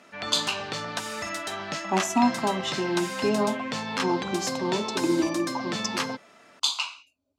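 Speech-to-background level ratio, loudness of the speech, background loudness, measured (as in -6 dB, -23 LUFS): 3.0 dB, -28.0 LUFS, -31.0 LUFS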